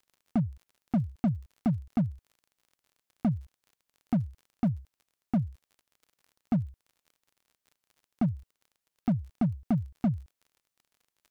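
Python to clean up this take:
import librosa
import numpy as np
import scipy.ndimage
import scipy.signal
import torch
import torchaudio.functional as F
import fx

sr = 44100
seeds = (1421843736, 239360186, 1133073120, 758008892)

y = fx.fix_declip(x, sr, threshold_db=-21.0)
y = fx.fix_declick_ar(y, sr, threshold=6.5)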